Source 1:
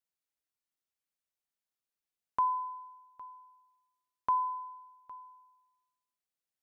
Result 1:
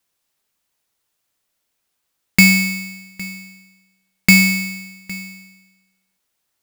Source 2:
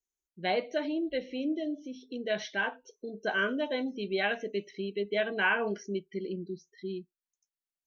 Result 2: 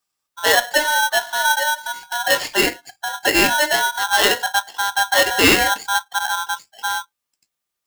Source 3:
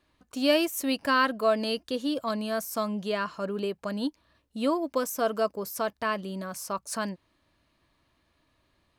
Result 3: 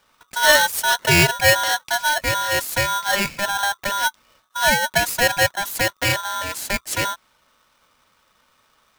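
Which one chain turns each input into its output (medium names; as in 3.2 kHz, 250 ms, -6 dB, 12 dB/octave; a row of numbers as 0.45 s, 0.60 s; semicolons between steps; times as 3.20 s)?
polarity switched at an audio rate 1.2 kHz; peak normalisation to -3 dBFS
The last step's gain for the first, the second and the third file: +18.5 dB, +13.5 dB, +8.5 dB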